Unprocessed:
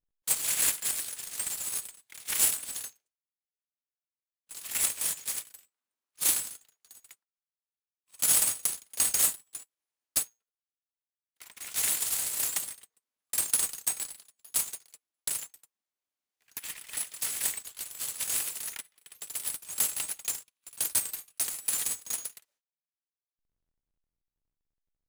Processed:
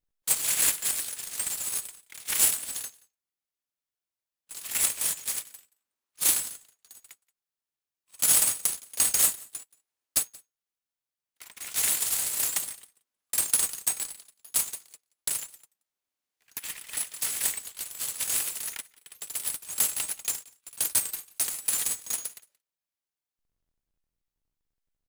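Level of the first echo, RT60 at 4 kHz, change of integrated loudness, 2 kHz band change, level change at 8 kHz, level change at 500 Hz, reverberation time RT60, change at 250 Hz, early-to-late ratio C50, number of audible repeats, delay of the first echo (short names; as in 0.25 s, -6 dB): -24.0 dB, none, +2.5 dB, +2.5 dB, +2.5 dB, +2.5 dB, none, +2.5 dB, none, 1, 0.177 s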